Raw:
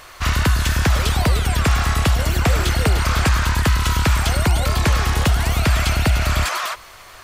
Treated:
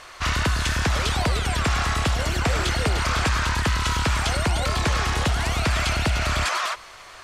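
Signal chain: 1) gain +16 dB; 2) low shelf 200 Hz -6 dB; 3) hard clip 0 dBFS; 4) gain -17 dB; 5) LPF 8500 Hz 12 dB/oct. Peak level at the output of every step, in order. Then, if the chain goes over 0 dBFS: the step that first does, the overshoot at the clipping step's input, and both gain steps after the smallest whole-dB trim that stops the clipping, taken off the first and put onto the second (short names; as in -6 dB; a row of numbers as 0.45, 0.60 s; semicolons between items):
+8.0, +8.0, 0.0, -17.0, -16.0 dBFS; step 1, 8.0 dB; step 1 +8 dB, step 4 -9 dB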